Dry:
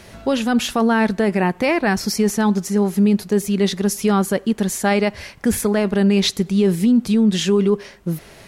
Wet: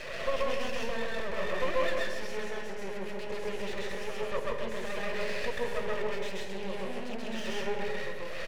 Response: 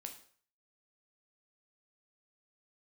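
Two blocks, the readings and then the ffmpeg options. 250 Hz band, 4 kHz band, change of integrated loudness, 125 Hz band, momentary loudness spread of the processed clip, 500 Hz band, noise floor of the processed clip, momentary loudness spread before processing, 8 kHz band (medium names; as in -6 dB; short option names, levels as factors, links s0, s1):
-26.0 dB, -14.0 dB, -16.5 dB, -23.0 dB, 7 LU, -12.5 dB, -35 dBFS, 5 LU, -21.5 dB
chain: -filter_complex "[0:a]bandreject=f=60:t=h:w=6,bandreject=f=120:t=h:w=6,bandreject=f=180:t=h:w=6,bandreject=f=240:t=h:w=6,bandreject=f=300:t=h:w=6,bandreject=f=360:t=h:w=6,bandreject=f=420:t=h:w=6,acompressor=threshold=0.0224:ratio=2,tremolo=f=0.56:d=0.41,asplit=2[s0][s1];[s1]highpass=f=720:p=1,volume=35.5,asoftclip=type=tanh:threshold=0.133[s2];[s0][s2]amix=inputs=2:normalize=0,lowpass=f=6800:p=1,volume=0.501,flanger=delay=2.8:depth=6.3:regen=28:speed=1.8:shape=triangular,asplit=3[s3][s4][s5];[s3]bandpass=f=530:t=q:w=8,volume=1[s6];[s4]bandpass=f=1840:t=q:w=8,volume=0.501[s7];[s5]bandpass=f=2480:t=q:w=8,volume=0.355[s8];[s6][s7][s8]amix=inputs=3:normalize=0,aeval=exprs='max(val(0),0)':c=same,asplit=2[s9][s10];[s10]adelay=153,lowpass=f=820:p=1,volume=0.596,asplit=2[s11][s12];[s12]adelay=153,lowpass=f=820:p=1,volume=0.51,asplit=2[s13][s14];[s14]adelay=153,lowpass=f=820:p=1,volume=0.51,asplit=2[s15][s16];[s16]adelay=153,lowpass=f=820:p=1,volume=0.51,asplit=2[s17][s18];[s18]adelay=153,lowpass=f=820:p=1,volume=0.51,asplit=2[s19][s20];[s20]adelay=153,lowpass=f=820:p=1,volume=0.51,asplit=2[s21][s22];[s22]adelay=153,lowpass=f=820:p=1,volume=0.51[s23];[s9][s11][s13][s15][s17][s19][s21][s23]amix=inputs=8:normalize=0,asplit=2[s24][s25];[1:a]atrim=start_sample=2205,asetrate=33075,aresample=44100,adelay=132[s26];[s25][s26]afir=irnorm=-1:irlink=0,volume=1.68[s27];[s24][s27]amix=inputs=2:normalize=0,volume=1.88"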